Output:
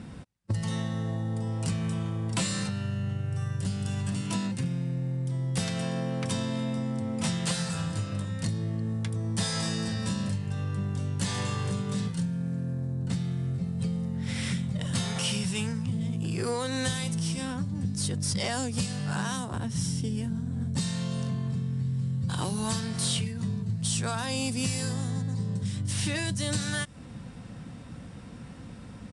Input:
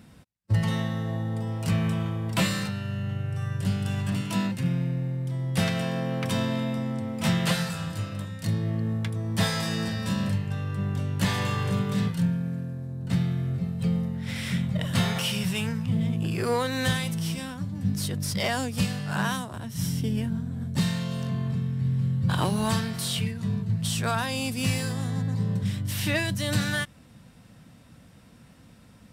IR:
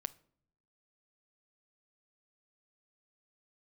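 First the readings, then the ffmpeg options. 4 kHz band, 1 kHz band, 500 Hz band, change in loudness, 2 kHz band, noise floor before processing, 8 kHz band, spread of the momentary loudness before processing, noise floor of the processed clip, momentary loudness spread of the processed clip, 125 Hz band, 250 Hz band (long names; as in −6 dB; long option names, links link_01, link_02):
−2.0 dB, −5.0 dB, −4.0 dB, −2.5 dB, −5.5 dB, −52 dBFS, +2.5 dB, 5 LU, −44 dBFS, 4 LU, −2.5 dB, −3.0 dB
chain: -filter_complex "[0:a]tiltshelf=frequency=1500:gain=3,bandreject=frequency=630:width=12,acrossover=split=4700[link_01][link_02];[link_01]acompressor=threshold=-35dB:ratio=6[link_03];[link_03][link_02]amix=inputs=2:normalize=0,aresample=22050,aresample=44100,volume=6.5dB"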